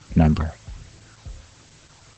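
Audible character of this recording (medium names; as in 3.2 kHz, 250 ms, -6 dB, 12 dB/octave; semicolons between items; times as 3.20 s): phasing stages 12, 1.3 Hz, lowest notch 270–1200 Hz; a quantiser's noise floor 8-bit, dither triangular; Opus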